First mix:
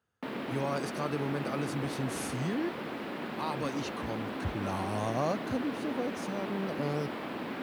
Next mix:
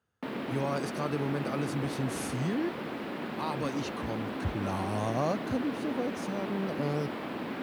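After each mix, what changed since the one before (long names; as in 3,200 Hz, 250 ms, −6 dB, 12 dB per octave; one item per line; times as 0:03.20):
master: add low-shelf EQ 390 Hz +2.5 dB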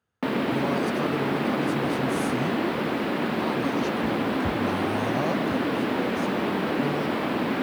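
background +10.5 dB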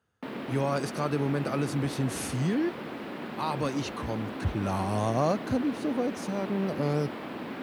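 speech +4.0 dB
background −11.5 dB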